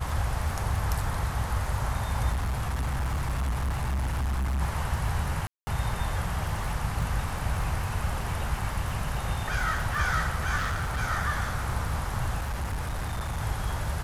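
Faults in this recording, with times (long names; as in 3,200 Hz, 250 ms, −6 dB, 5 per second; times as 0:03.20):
surface crackle 29 per second −33 dBFS
0:02.32–0:04.62: clipping −25 dBFS
0:05.47–0:05.67: drop-out 200 ms
0:10.56–0:11.00: clipping −25.5 dBFS
0:12.39–0:13.42: clipping −27 dBFS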